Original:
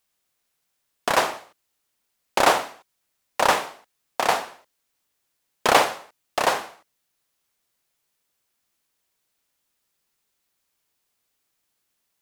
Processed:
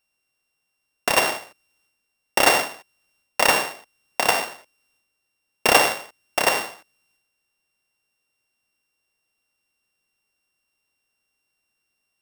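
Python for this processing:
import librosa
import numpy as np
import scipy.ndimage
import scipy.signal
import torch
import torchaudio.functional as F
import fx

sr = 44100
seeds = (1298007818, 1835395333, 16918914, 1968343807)

y = np.r_[np.sort(x[:len(x) // 16 * 16].reshape(-1, 16), axis=1).ravel(), x[len(x) // 16 * 16:]]
y = fx.transient(y, sr, attack_db=3, sustain_db=7)
y = y * 10.0 ** (-1.0 / 20.0)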